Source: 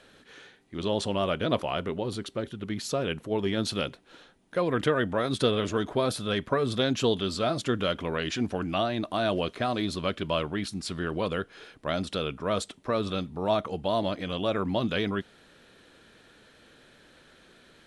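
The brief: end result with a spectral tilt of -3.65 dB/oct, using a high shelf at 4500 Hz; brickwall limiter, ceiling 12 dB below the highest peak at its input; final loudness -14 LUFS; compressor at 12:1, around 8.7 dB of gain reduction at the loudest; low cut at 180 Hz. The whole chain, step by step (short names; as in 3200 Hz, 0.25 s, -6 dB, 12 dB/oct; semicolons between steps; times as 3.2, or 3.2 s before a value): HPF 180 Hz; high shelf 4500 Hz +7.5 dB; compressor 12:1, threshold -28 dBFS; gain +24 dB; limiter -3 dBFS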